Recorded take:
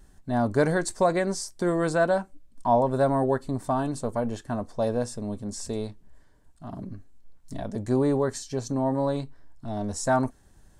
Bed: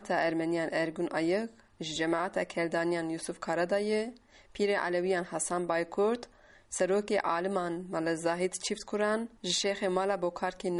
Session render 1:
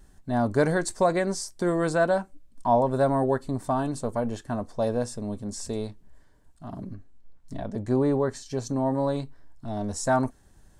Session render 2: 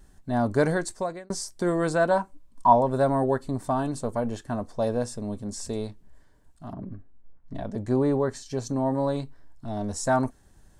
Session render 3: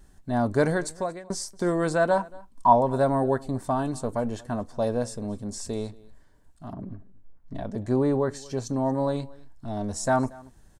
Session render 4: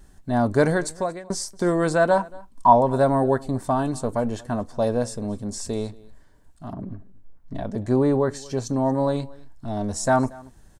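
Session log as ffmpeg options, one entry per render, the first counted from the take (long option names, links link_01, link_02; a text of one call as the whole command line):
ffmpeg -i in.wav -filter_complex "[0:a]asettb=1/sr,asplit=3[link_01][link_02][link_03];[link_01]atrim=end=6.944[link_04];[link_02]atrim=start=6.94:end=8.46,asetpts=PTS-STARTPTS,afade=type=in:duration=0.004:curve=qsin,afade=type=out:start_time=1.516:duration=0.004:curve=qsin,highshelf=frequency=5400:gain=-9.5[link_05];[link_03]atrim=start=8.456[link_06];[link_04][link_05]acrossfade=duration=0.004:curve1=hsin:curve2=qsin[link_07];[link_07][link_06]acrossfade=duration=0.004:curve1=qsin:curve2=hsin" out.wav
ffmpeg -i in.wav -filter_complex "[0:a]asettb=1/sr,asplit=3[link_01][link_02][link_03];[link_01]atrim=end=2.114[link_04];[link_02]atrim=start=2.11:end=2.73,asetpts=PTS-STARTPTS,afade=type=in:duration=0.004:curve=qsin,afade=type=out:start_time=0.616:duration=0.004:curve=qsin,equalizer=frequency=1000:width_type=o:width=0.4:gain=11.5[link_05];[link_03]atrim=start=2.726[link_06];[link_04][link_05]acrossfade=duration=0.004:curve1=hsin:curve2=qsin[link_07];[link_07][link_06]acrossfade=duration=0.004:curve1=qsin:curve2=hsin,asettb=1/sr,asplit=3[link_08][link_09][link_10];[link_08]atrim=end=6.734[link_11];[link_09]atrim=start=6.73:end=7.55,asetpts=PTS-STARTPTS,afade=type=in:duration=0.004:curve=qsin,afade=type=out:start_time=0.816:duration=0.004:curve=qsin,lowpass=1900[link_12];[link_10]atrim=start=7.546[link_13];[link_11][link_12]acrossfade=duration=0.004:curve1=hsin:curve2=qsin[link_14];[link_14][link_13]acrossfade=duration=0.004:curve1=qsin:curve2=hsin,asplit=2[link_15][link_16];[link_15]atrim=end=1.3,asetpts=PTS-STARTPTS,afade=type=out:start_time=0.69:duration=0.61[link_17];[link_16]atrim=start=1.3,asetpts=PTS-STARTPTS,afade=type=in:duration=0.004:curve=hsin[link_18];[link_17][link_18]concat=n=2:v=0:a=1" out.wav
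ffmpeg -i in.wav -af "aecho=1:1:231:0.0708" out.wav
ffmpeg -i in.wav -af "volume=3.5dB,alimiter=limit=-2dB:level=0:latency=1" out.wav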